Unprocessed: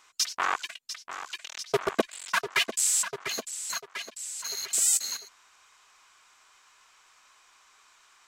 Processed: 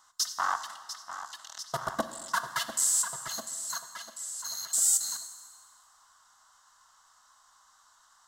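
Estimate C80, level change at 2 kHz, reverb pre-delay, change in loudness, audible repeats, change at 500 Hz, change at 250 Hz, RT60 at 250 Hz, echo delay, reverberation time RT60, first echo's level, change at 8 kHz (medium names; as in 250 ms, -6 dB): 12.5 dB, -6.0 dB, 8 ms, -1.5 dB, no echo, -9.0 dB, -6.5 dB, 1.9 s, no echo, 1.8 s, no echo, -0.5 dB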